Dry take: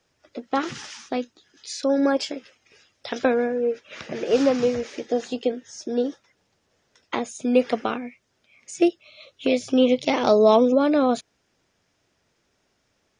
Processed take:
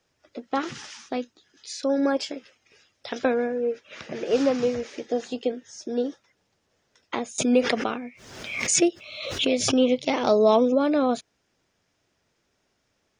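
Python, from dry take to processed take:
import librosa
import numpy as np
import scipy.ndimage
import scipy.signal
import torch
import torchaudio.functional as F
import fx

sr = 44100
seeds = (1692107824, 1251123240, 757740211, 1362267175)

y = fx.pre_swell(x, sr, db_per_s=54.0, at=(7.38, 9.91))
y = y * librosa.db_to_amplitude(-2.5)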